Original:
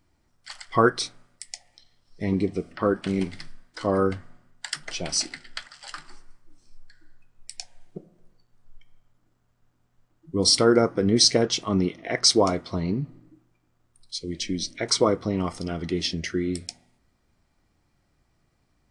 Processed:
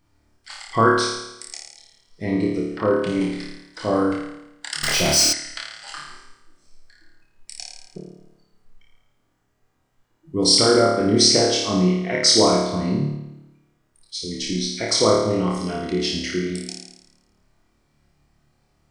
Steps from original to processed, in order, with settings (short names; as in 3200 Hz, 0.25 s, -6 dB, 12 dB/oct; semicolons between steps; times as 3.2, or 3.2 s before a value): flutter echo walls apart 4.7 m, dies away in 0.89 s; 4.83–5.33 power-law curve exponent 0.5